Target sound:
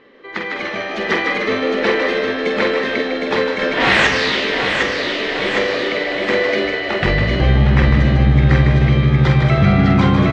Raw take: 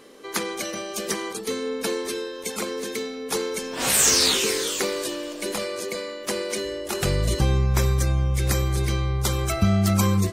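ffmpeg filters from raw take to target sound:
ffmpeg -i in.wav -filter_complex "[0:a]lowpass=frequency=3400:width=0.5412,lowpass=frequency=3400:width=1.3066,asplit=2[link_01][link_02];[link_02]adelay=47,volume=-6dB[link_03];[link_01][link_03]amix=inputs=2:normalize=0,asplit=2[link_04][link_05];[link_05]asplit=6[link_06][link_07][link_08][link_09][link_10][link_11];[link_06]adelay=153,afreqshift=78,volume=-6dB[link_12];[link_07]adelay=306,afreqshift=156,volume=-12.6dB[link_13];[link_08]adelay=459,afreqshift=234,volume=-19.1dB[link_14];[link_09]adelay=612,afreqshift=312,volume=-25.7dB[link_15];[link_10]adelay=765,afreqshift=390,volume=-32.2dB[link_16];[link_11]adelay=918,afreqshift=468,volume=-38.8dB[link_17];[link_12][link_13][link_14][link_15][link_16][link_17]amix=inputs=6:normalize=0[link_18];[link_04][link_18]amix=inputs=2:normalize=0,asettb=1/sr,asplit=3[link_19][link_20][link_21];[link_19]atrim=end=3.594[link_22];[link_20]atrim=start=3.59:end=4.07,asetpts=PTS-STARTPTS,afade=type=in:duration=0.004:curve=qsin,afade=type=out:start_time=0.476:duration=0.004:curve=qsin,acontrast=37[link_23];[link_21]atrim=start=4.066[link_24];[link_22][link_23]acrossfade=duration=0.004:curve1=hsin:curve2=qsin[link_25];[link_25][link_24]acrossfade=duration=0.004:curve1=qsin:curve2=hsin,equalizer=frequency=1900:width_type=o:width=0.23:gain=10,asplit=2[link_26][link_27];[link_27]aecho=0:1:760|1520|2280|3040|3800:0.668|0.261|0.102|0.0396|0.0155[link_28];[link_26][link_28]amix=inputs=2:normalize=0,dynaudnorm=framelen=210:gausssize=5:maxgain=10dB" -ar 24000 -c:a libmp3lame -b:a 160k out.mp3

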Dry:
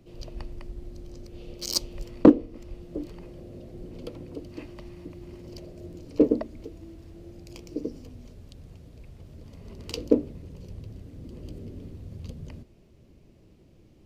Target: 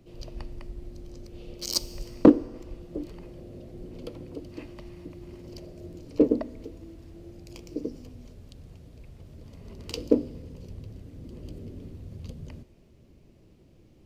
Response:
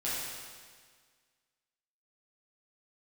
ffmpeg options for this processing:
-filter_complex "[0:a]asplit=2[link_01][link_02];[link_02]highshelf=frequency=9100:gain=8.5[link_03];[1:a]atrim=start_sample=2205[link_04];[link_03][link_04]afir=irnorm=-1:irlink=0,volume=-24dB[link_05];[link_01][link_05]amix=inputs=2:normalize=0,volume=-1dB"

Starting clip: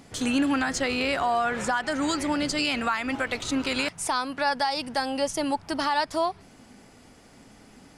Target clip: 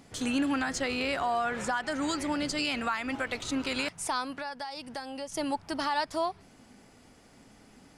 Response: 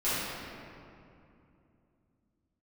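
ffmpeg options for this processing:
-filter_complex "[0:a]asettb=1/sr,asplit=3[link_01][link_02][link_03];[link_01]atrim=end=4.374[link_04];[link_02]atrim=start=4.37:end=5.32,asetpts=PTS-STARTPTS,afade=type=in:duration=0.004:curve=qsin,afade=type=out:start_time=0.946:duration=0.004:curve=qsin,acompressor=threshold=-33dB:ratio=3[link_05];[link_03]atrim=start=5.316[link_06];[link_04][link_05]acrossfade=duration=0.004:curve1=hsin:curve2=qsin[link_07];[link_07][link_06]acrossfade=duration=0.004:curve1=qsin:curve2=hsin,volume=-4.5dB"

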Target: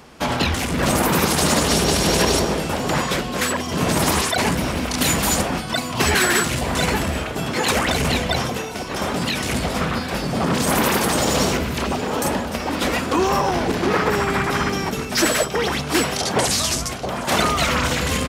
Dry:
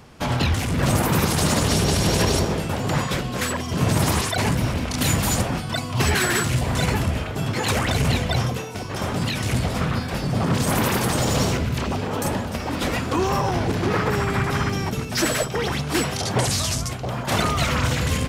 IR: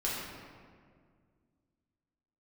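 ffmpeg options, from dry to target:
-af "highpass=47,equalizer=frequency=110:width=1.9:gain=-14,aecho=1:1:768:0.126,volume=4dB"

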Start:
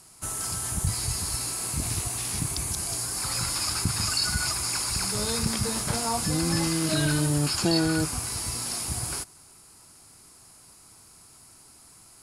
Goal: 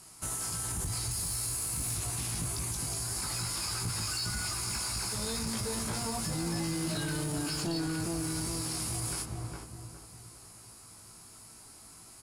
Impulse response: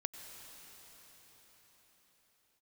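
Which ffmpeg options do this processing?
-filter_complex "[0:a]asettb=1/sr,asplit=3[link_01][link_02][link_03];[link_01]atrim=end=1.114[link_04];[link_02]atrim=start=1.11:end=1.95,asetpts=PTS-STARTPTS,afade=type=in:duration=0.004:curve=qsin,afade=type=out:start_time=0.836:duration=0.004:curve=qsin,highshelf=frequency=7800:gain=9[link_05];[link_03]atrim=start=1.946[link_06];[link_04][link_05]acrossfade=duration=0.004:curve1=hsin:curve2=qsin[link_07];[link_07][link_06]acrossfade=duration=0.004:curve1=qsin:curve2=hsin,asplit=2[link_08][link_09];[link_09]adelay=409,lowpass=frequency=1100:poles=1,volume=-5dB,asplit=2[link_10][link_11];[link_11]adelay=409,lowpass=frequency=1100:poles=1,volume=0.42,asplit=2[link_12][link_13];[link_13]adelay=409,lowpass=frequency=1100:poles=1,volume=0.42,asplit=2[link_14][link_15];[link_15]adelay=409,lowpass=frequency=1100:poles=1,volume=0.42,asplit=2[link_16][link_17];[link_17]adelay=409,lowpass=frequency=1100:poles=1,volume=0.42[link_18];[link_10][link_12][link_14][link_16][link_18]amix=inputs=5:normalize=0[link_19];[link_08][link_19]amix=inputs=2:normalize=0,asoftclip=type=tanh:threshold=-19dB,asplit=2[link_20][link_21];[link_21]adelay=18,volume=-4dB[link_22];[link_20][link_22]amix=inputs=2:normalize=0,alimiter=level_in=0.5dB:limit=-24dB:level=0:latency=1:release=42,volume=-0.5dB,volume=-1.5dB"

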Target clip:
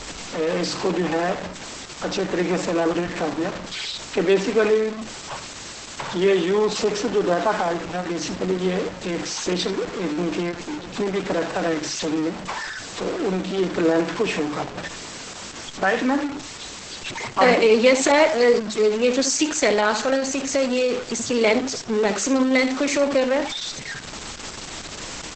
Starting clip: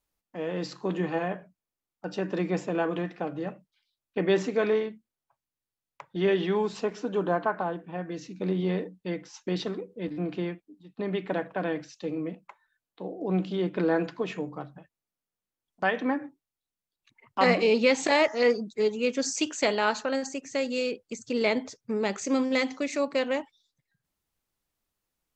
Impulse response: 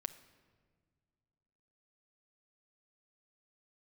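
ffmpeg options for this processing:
-filter_complex "[0:a]aeval=exprs='val(0)+0.5*0.0355*sgn(val(0))':channel_layout=same,bandreject=frequency=6800:width=30,acrossover=split=190[link_01][link_02];[link_01]acompressor=threshold=-46dB:ratio=10[link_03];[link_02]acrusher=bits=6:mode=log:mix=0:aa=0.000001[link_04];[link_03][link_04]amix=inputs=2:normalize=0,aecho=1:1:73:0.266,volume=6dB" -ar 48000 -c:a libopus -b:a 10k

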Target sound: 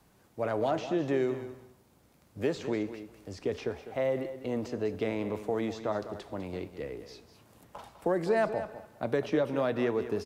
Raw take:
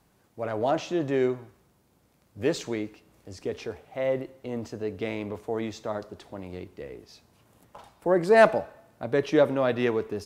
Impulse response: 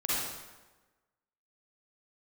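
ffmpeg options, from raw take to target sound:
-filter_complex "[0:a]acrossover=split=160|1900|4700[link_01][link_02][link_03][link_04];[link_01]acompressor=threshold=-46dB:ratio=4[link_05];[link_02]acompressor=threshold=-28dB:ratio=4[link_06];[link_03]acompressor=threshold=-50dB:ratio=4[link_07];[link_04]acompressor=threshold=-59dB:ratio=4[link_08];[link_05][link_06][link_07][link_08]amix=inputs=4:normalize=0,asplit=2[link_09][link_10];[link_10]aecho=0:1:201|402:0.251|0.0452[link_11];[link_09][link_11]amix=inputs=2:normalize=0,volume=1.5dB"

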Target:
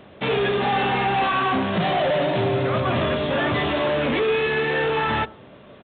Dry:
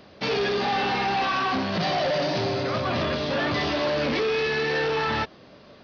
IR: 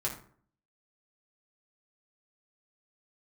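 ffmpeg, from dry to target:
-filter_complex "[0:a]asplit=2[link_01][link_02];[1:a]atrim=start_sample=2205,lowpass=1300[link_03];[link_02][link_03]afir=irnorm=-1:irlink=0,volume=-17.5dB[link_04];[link_01][link_04]amix=inputs=2:normalize=0,aresample=8000,aresample=44100,volume=3dB"

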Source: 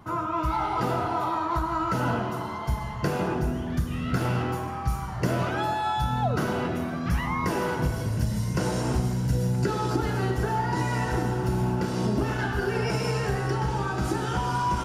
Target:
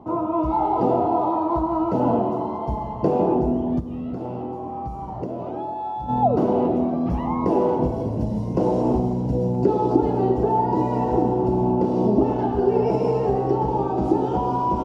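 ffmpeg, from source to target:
ffmpeg -i in.wav -filter_complex "[0:a]firequalizer=gain_entry='entry(140,0);entry(250,11);entry(830,10);entry(1500,-16);entry(2600,-9);entry(11000,-22)':delay=0.05:min_phase=1,asplit=3[link_01][link_02][link_03];[link_01]afade=type=out:start_time=3.79:duration=0.02[link_04];[link_02]acompressor=threshold=-26dB:ratio=6,afade=type=in:start_time=3.79:duration=0.02,afade=type=out:start_time=6.08:duration=0.02[link_05];[link_03]afade=type=in:start_time=6.08:duration=0.02[link_06];[link_04][link_05][link_06]amix=inputs=3:normalize=0,volume=-1dB" out.wav

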